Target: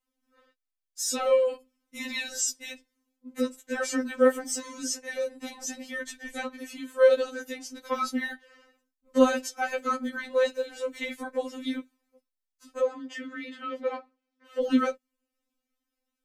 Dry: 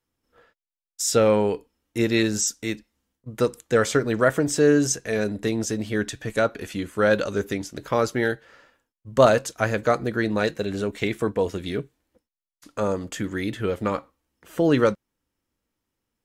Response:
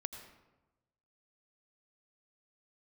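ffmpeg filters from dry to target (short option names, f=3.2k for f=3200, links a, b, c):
-filter_complex "[0:a]asettb=1/sr,asplit=3[a][b][c];[a]atrim=end=12.804[d];[b]atrim=start=12.8:end=14.62,asetpts=PTS-STARTPTS,afade=t=in:d=0.004:c=qsin,afade=t=out:st=1.816:d=0.004:c=qsin,acrossover=split=190 4900:gain=0.178 1 0.1[e][f][g];[e][f][g]amix=inputs=3:normalize=0[h];[c]atrim=start=14.616[i];[d][h]acrossfade=d=0.004:c1=hsin:c2=qsin[j];[j][i]acrossfade=d=0.004:c1=qsin:c2=hsin,afftfilt=real='re*3.46*eq(mod(b,12),0)':imag='im*3.46*eq(mod(b,12),0)':win_size=2048:overlap=0.75,volume=-1.5dB"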